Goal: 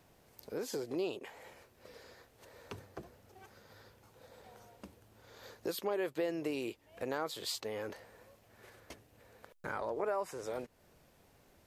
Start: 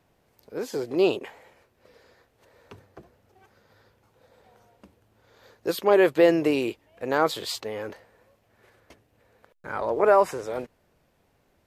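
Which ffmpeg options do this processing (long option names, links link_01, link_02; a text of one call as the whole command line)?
ffmpeg -i in.wav -af "bass=frequency=250:gain=0,treble=frequency=4000:gain=5,acompressor=threshold=-40dB:ratio=3,volume=1dB" out.wav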